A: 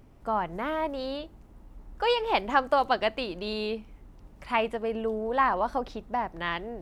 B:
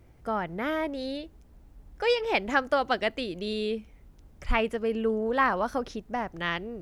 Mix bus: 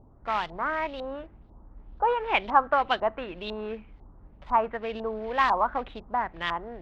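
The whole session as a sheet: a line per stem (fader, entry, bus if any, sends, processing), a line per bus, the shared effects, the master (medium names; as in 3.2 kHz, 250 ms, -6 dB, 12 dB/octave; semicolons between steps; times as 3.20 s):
-1.0 dB, 0.00 s, no send, level-controlled noise filter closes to 820 Hz, open at -23.5 dBFS; elliptic low-pass 3.9 kHz; peaking EQ 69 Hz +3.5 dB 1.8 oct
-5.0 dB, 0.00 s, polarity flipped, no send, gate with hold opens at -44 dBFS; delay time shaken by noise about 3.4 kHz, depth 0.13 ms; auto duck -11 dB, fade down 1.30 s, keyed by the first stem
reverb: none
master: LFO low-pass saw up 2 Hz 850–3900 Hz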